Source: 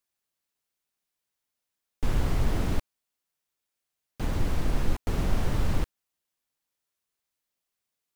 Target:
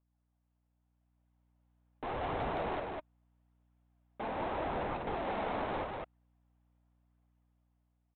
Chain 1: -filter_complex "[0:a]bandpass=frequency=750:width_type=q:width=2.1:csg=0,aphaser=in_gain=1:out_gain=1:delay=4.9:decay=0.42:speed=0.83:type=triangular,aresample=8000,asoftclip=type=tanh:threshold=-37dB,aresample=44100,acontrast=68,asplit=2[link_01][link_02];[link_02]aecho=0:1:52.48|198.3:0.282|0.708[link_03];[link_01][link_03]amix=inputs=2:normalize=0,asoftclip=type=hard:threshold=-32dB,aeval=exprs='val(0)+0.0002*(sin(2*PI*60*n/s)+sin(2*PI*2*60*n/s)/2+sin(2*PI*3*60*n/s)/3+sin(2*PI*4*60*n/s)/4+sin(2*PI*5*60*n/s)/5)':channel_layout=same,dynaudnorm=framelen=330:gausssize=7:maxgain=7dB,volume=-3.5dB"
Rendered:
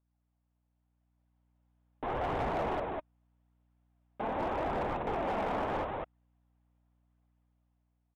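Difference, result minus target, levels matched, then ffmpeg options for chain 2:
soft clipping: distortion −7 dB
-filter_complex "[0:a]bandpass=frequency=750:width_type=q:width=2.1:csg=0,aphaser=in_gain=1:out_gain=1:delay=4.9:decay=0.42:speed=0.83:type=triangular,aresample=8000,asoftclip=type=tanh:threshold=-44.5dB,aresample=44100,acontrast=68,asplit=2[link_01][link_02];[link_02]aecho=0:1:52.48|198.3:0.282|0.708[link_03];[link_01][link_03]amix=inputs=2:normalize=0,asoftclip=type=hard:threshold=-32dB,aeval=exprs='val(0)+0.0002*(sin(2*PI*60*n/s)+sin(2*PI*2*60*n/s)/2+sin(2*PI*3*60*n/s)/3+sin(2*PI*4*60*n/s)/4+sin(2*PI*5*60*n/s)/5)':channel_layout=same,dynaudnorm=framelen=330:gausssize=7:maxgain=7dB,volume=-3.5dB"

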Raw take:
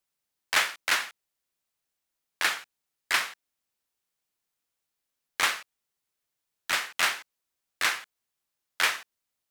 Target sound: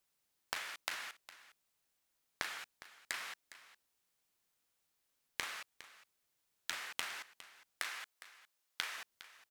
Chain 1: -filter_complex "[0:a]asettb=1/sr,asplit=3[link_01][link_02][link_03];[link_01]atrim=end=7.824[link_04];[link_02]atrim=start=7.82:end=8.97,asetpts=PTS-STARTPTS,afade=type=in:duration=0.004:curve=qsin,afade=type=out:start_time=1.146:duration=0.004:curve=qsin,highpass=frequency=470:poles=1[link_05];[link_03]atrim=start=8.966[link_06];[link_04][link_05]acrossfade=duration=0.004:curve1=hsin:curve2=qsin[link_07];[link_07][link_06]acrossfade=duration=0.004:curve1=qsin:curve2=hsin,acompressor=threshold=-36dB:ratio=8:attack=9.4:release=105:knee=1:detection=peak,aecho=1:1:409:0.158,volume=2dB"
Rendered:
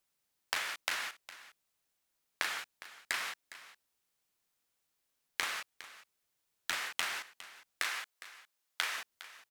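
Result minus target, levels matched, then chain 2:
downward compressor: peak gain reduction −7 dB
-filter_complex "[0:a]asettb=1/sr,asplit=3[link_01][link_02][link_03];[link_01]atrim=end=7.824[link_04];[link_02]atrim=start=7.82:end=8.97,asetpts=PTS-STARTPTS,afade=type=in:duration=0.004:curve=qsin,afade=type=out:start_time=1.146:duration=0.004:curve=qsin,highpass=frequency=470:poles=1[link_05];[link_03]atrim=start=8.966[link_06];[link_04][link_05]acrossfade=duration=0.004:curve1=hsin:curve2=qsin[link_07];[link_07][link_06]acrossfade=duration=0.004:curve1=qsin:curve2=hsin,acompressor=threshold=-44dB:ratio=8:attack=9.4:release=105:knee=1:detection=peak,aecho=1:1:409:0.158,volume=2dB"

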